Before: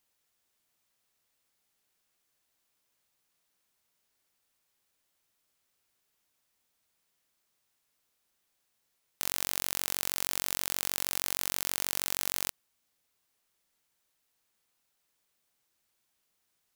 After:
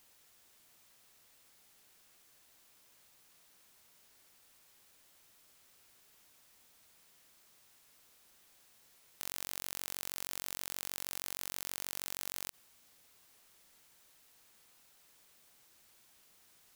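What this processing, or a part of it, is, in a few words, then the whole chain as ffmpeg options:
de-esser from a sidechain: -filter_complex "[0:a]asplit=2[link_01][link_02];[link_02]highpass=5500,apad=whole_len=738858[link_03];[link_01][link_03]sidechaincompress=threshold=-39dB:ratio=16:attack=0.61:release=38,volume=12.5dB"

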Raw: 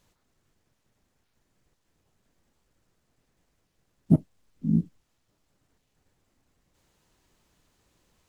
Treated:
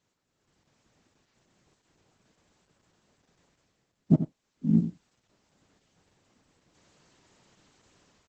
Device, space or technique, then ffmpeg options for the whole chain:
video call: -filter_complex "[0:a]asplit=3[link_01][link_02][link_03];[link_01]afade=type=out:start_time=4.15:duration=0.02[link_04];[link_02]lowshelf=frequency=190:gain=-6,afade=type=in:start_time=4.15:duration=0.02,afade=type=out:start_time=4.8:duration=0.02[link_05];[link_03]afade=type=in:start_time=4.8:duration=0.02[link_06];[link_04][link_05][link_06]amix=inputs=3:normalize=0,highpass=110,aecho=1:1:88:0.282,dynaudnorm=framelen=190:gausssize=5:maxgain=14.5dB,volume=-7dB" -ar 48000 -c:a libopus -b:a 12k

